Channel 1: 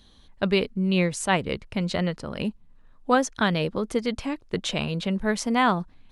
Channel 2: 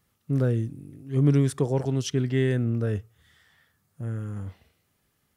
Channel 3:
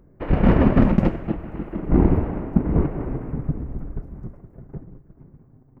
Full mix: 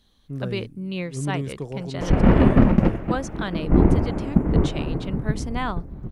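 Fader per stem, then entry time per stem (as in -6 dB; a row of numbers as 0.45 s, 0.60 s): -7.0 dB, -7.5 dB, +0.5 dB; 0.00 s, 0.00 s, 1.80 s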